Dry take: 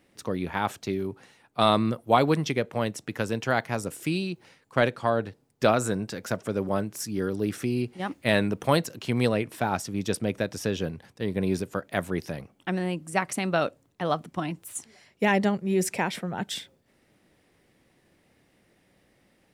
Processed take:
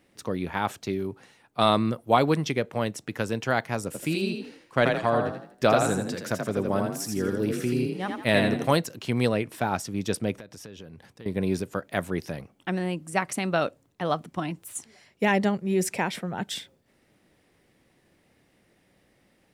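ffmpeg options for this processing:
ffmpeg -i in.wav -filter_complex "[0:a]asettb=1/sr,asplit=3[link_01][link_02][link_03];[link_01]atrim=end=3.864[link_04];[link_02]atrim=start=3.86:end=8.76,asetpts=PTS-STARTPTS,afade=type=in:duration=0.004:curve=qsin,afade=type=out:start_time=4.896:duration=0.004:curve=qsin,asplit=6[link_05][link_06][link_07][link_08][link_09][link_10];[link_06]adelay=82,afreqshift=32,volume=-4dB[link_11];[link_07]adelay=164,afreqshift=64,volume=-12.6dB[link_12];[link_08]adelay=246,afreqshift=96,volume=-21.3dB[link_13];[link_09]adelay=328,afreqshift=128,volume=-29.9dB[link_14];[link_10]adelay=410,afreqshift=160,volume=-38.5dB[link_15];[link_05][link_11][link_12][link_13][link_14][link_15]amix=inputs=6:normalize=0,atrim=end_sample=216090[link_16];[link_03]atrim=start=8.756[link_17];[link_04][link_16]acrossfade=duration=0.004:curve1=hsin:curve2=qsin[link_18];[link_18][link_17]acrossfade=duration=0.004:curve1=qsin:curve2=hsin,asettb=1/sr,asplit=3[link_19][link_20][link_21];[link_19]atrim=end=10.364[link_22];[link_20]atrim=start=10.36:end=11.26,asetpts=PTS-STARTPTS,afade=type=in:duration=0.004:curve=qsin,afade=type=out:start_time=0.896:duration=0.004:curve=qsin,acompressor=threshold=-41dB:ratio=5:attack=3.2:release=140:knee=1:detection=peak[link_23];[link_21]atrim=start=11.256[link_24];[link_22][link_23]acrossfade=duration=0.004:curve1=hsin:curve2=qsin[link_25];[link_25][link_24]acrossfade=duration=0.004:curve1=qsin:curve2=hsin" out.wav

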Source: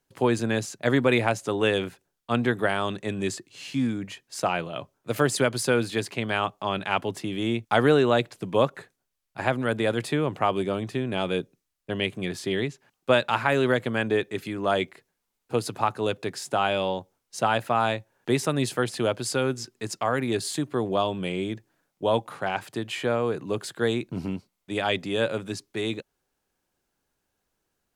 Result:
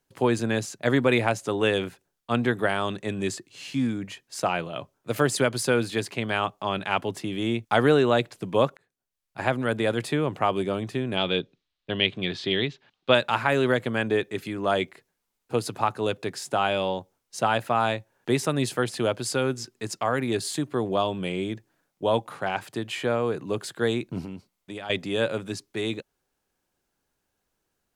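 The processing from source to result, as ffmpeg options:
ffmpeg -i in.wav -filter_complex "[0:a]asettb=1/sr,asplit=3[link_01][link_02][link_03];[link_01]atrim=end=11.174[link_04];[link_02]atrim=start=11.17:end=13.15,asetpts=PTS-STARTPTS,afade=type=in:duration=0.004:curve=qsin,afade=type=out:start_time=1.976:duration=0.004:curve=qsin,lowpass=frequency=3700:width_type=q:width=2.9[link_05];[link_03]atrim=start=13.146[link_06];[link_04][link_05]acrossfade=duration=0.004:curve1=hsin:curve2=qsin[link_07];[link_07][link_06]acrossfade=duration=0.004:curve1=qsin:curve2=hsin,asettb=1/sr,asplit=3[link_08][link_09][link_10];[link_08]atrim=end=24.214[link_11];[link_09]atrim=start=24.21:end=24.9,asetpts=PTS-STARTPTS,afade=type=in:duration=0.004:curve=qsin,afade=type=out:start_time=0.686:duration=0.004:curve=qsin,acompressor=threshold=-33dB:ratio=5:attack=3.2:release=140:knee=1:detection=peak[link_12];[link_10]atrim=start=24.896[link_13];[link_11][link_12]acrossfade=duration=0.004:curve1=hsin:curve2=qsin[link_14];[link_14][link_13]acrossfade=duration=0.004:curve1=qsin:curve2=hsin,asplit=2[link_15][link_16];[link_15]atrim=end=8.77,asetpts=PTS-STARTPTS,afade=type=out:start_time=8.766:duration=0.004:curve=hsin[link_17];[link_16]atrim=start=8.77,asetpts=PTS-STARTPTS,afade=type=in:duration=0.65[link_18];[link_17][link_18]concat=n=2:v=0:a=1" out.wav

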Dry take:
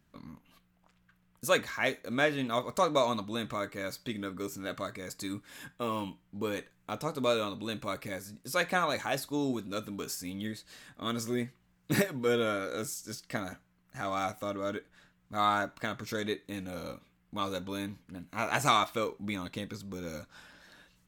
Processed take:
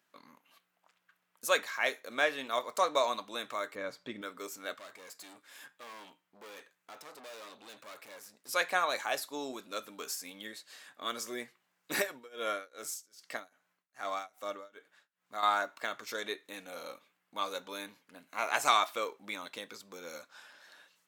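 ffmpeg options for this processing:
ffmpeg -i in.wav -filter_complex "[0:a]asettb=1/sr,asplit=3[link_01][link_02][link_03];[link_01]atrim=end=3.754[link_04];[link_02]atrim=start=3.75:end=4.22,asetpts=PTS-STARTPTS,afade=type=in:duration=0.004:curve=qsin,afade=type=out:start_time=0.466:duration=0.004:curve=qsin,aemphasis=mode=reproduction:type=riaa[link_05];[link_03]atrim=start=4.216[link_06];[link_04][link_05]acrossfade=duration=0.004:curve1=hsin:curve2=qsin[link_07];[link_07][link_06]acrossfade=duration=0.004:curve1=qsin:curve2=hsin,asettb=1/sr,asplit=3[link_08][link_09][link_10];[link_08]atrim=end=4.744[link_11];[link_09]atrim=start=4.74:end=8.49,asetpts=PTS-STARTPTS,afade=type=in:duration=0.004:curve=qsin,afade=type=out:start_time=3.746:duration=0.004:curve=qsin,aeval=exprs='(tanh(158*val(0)+0.55)-tanh(0.55))/158':channel_layout=same[link_12];[link_10]atrim=start=8.486[link_13];[link_11][link_12]acrossfade=duration=0.004:curve1=hsin:curve2=qsin[link_14];[link_14][link_13]acrossfade=duration=0.004:curve1=qsin:curve2=hsin,asettb=1/sr,asplit=3[link_15][link_16][link_17];[link_15]atrim=end=12.104[link_18];[link_16]atrim=start=12.1:end=15.43,asetpts=PTS-STARTPTS,afade=type=in:duration=0.004:curve=qsin,afade=type=out:start_time=3.326:duration=0.004:curve=qsin,tremolo=f=2.5:d=0.96[link_19];[link_17]atrim=start=15.426[link_20];[link_18][link_19]acrossfade=duration=0.004:curve1=hsin:curve2=qsin[link_21];[link_21][link_20]acrossfade=duration=0.004:curve1=qsin:curve2=hsin,highpass=540" out.wav

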